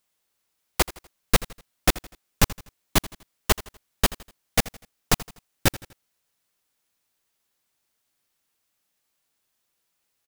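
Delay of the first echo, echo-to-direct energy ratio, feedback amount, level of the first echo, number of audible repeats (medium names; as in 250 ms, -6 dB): 82 ms, -17.0 dB, 41%, -18.0 dB, 3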